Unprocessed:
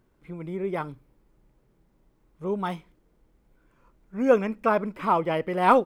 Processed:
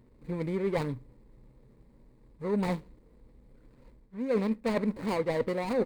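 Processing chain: median filter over 41 samples; rippled EQ curve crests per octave 0.97, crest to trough 7 dB; reverse; compression 20:1, threshold -32 dBFS, peak gain reduction 21 dB; reverse; trim +7 dB

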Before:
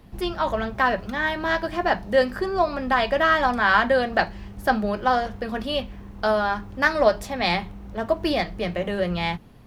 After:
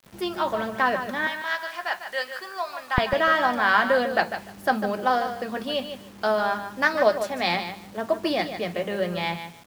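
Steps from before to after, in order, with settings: high-pass 170 Hz 12 dB/octave, from 1.27 s 1.1 kHz, from 2.98 s 190 Hz; feedback delay 149 ms, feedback 19%, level -9.5 dB; bit crusher 8-bit; trim -1.5 dB

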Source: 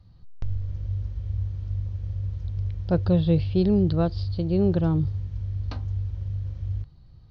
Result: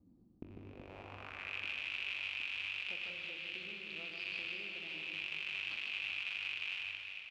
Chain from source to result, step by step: rattle on loud lows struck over -30 dBFS, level -18 dBFS; ten-band graphic EQ 125 Hz -11 dB, 250 Hz +7 dB, 2 kHz -7 dB; compression, threshold -32 dBFS, peak gain reduction 15.5 dB; band-pass sweep 280 Hz -> 2.8 kHz, 0.59–1.59 s; reverse bouncing-ball echo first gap 150 ms, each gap 1.5×, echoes 5; reverberation RT60 2.8 s, pre-delay 20 ms, DRR 3.5 dB; trim +2 dB

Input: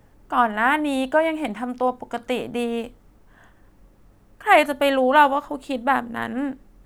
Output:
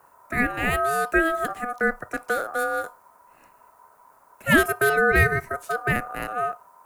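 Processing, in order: FFT filter 230 Hz 0 dB, 350 Hz +6 dB, 2.5 kHz -9 dB, 11 kHz +12 dB; ring modulator 1 kHz; frequency shift -23 Hz

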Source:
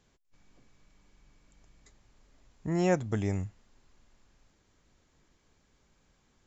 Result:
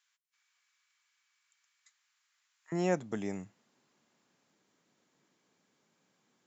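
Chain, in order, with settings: high-pass 1.3 kHz 24 dB/octave, from 2.72 s 160 Hz; trim -3.5 dB

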